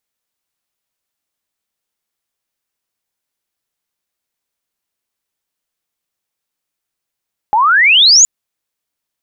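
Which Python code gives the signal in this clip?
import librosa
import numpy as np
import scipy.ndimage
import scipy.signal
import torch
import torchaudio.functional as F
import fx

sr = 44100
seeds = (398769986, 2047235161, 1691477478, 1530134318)

y = fx.chirp(sr, length_s=0.72, from_hz=810.0, to_hz=7100.0, law='logarithmic', from_db=-8.0, to_db=-3.0)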